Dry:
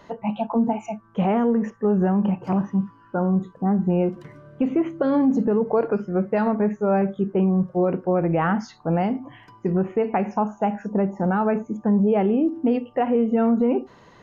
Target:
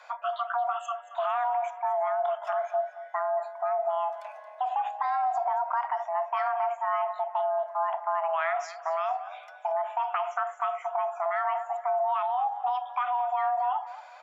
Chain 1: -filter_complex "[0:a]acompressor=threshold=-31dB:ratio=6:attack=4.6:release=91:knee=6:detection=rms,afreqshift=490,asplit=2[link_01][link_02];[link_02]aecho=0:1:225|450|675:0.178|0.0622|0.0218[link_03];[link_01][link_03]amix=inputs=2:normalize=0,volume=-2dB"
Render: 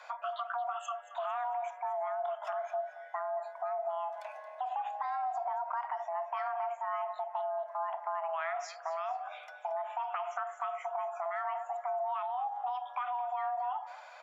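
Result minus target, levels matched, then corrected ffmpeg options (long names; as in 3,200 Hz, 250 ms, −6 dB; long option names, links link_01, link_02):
downward compressor: peak gain reduction +7.5 dB
-filter_complex "[0:a]acompressor=threshold=-22dB:ratio=6:attack=4.6:release=91:knee=6:detection=rms,afreqshift=490,asplit=2[link_01][link_02];[link_02]aecho=0:1:225|450|675:0.178|0.0622|0.0218[link_03];[link_01][link_03]amix=inputs=2:normalize=0,volume=-2dB"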